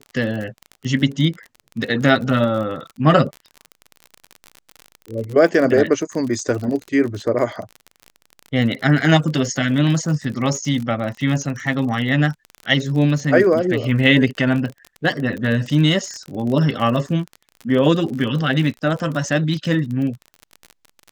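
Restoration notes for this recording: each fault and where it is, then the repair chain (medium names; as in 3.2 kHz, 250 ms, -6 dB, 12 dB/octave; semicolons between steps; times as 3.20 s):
crackle 43 per s -26 dBFS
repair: de-click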